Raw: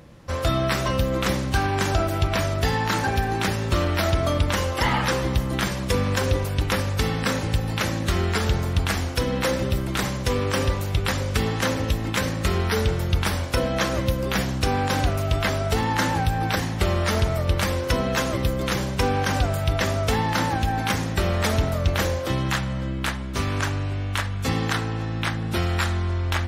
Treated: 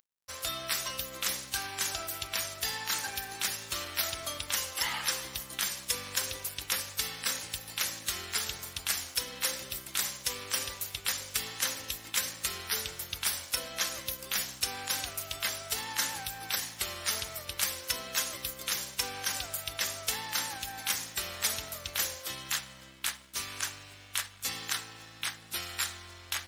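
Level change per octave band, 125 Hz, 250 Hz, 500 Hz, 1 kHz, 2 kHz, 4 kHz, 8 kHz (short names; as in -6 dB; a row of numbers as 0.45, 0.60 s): -28.0, -25.0, -20.0, -15.0, -9.0, -3.0, +2.0 dB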